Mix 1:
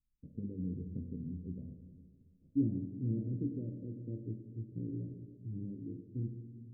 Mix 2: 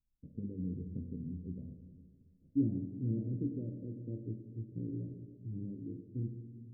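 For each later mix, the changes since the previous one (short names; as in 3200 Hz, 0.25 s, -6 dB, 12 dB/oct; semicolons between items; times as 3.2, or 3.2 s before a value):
second voice: add bell 1100 Hz +8.5 dB 1 oct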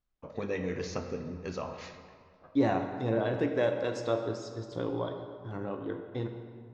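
master: remove inverse Chebyshev band-stop 840–8100 Hz, stop band 60 dB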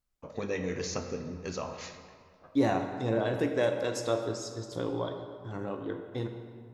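master: remove air absorption 130 m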